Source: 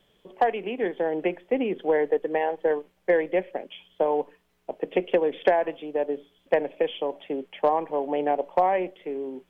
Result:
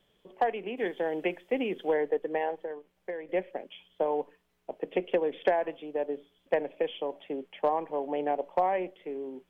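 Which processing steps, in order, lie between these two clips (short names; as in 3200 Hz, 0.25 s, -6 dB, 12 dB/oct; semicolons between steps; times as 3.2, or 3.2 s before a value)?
0.77–1.94 high shelf 2700 Hz +11 dB; 2.62–3.29 compressor 2.5:1, threshold -34 dBFS, peak gain reduction 11.5 dB; gain -5 dB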